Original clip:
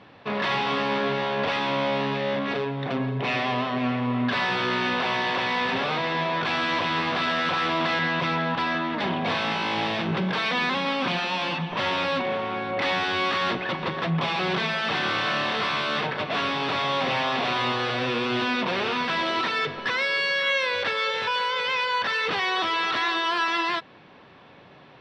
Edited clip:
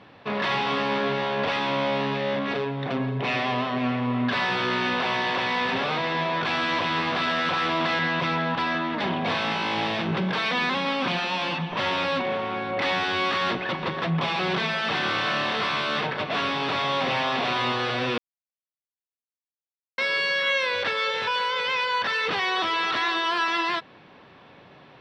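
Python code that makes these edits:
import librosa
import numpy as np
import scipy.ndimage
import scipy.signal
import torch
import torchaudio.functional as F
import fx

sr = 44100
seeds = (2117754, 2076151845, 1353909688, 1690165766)

y = fx.edit(x, sr, fx.silence(start_s=18.18, length_s=1.8), tone=tone)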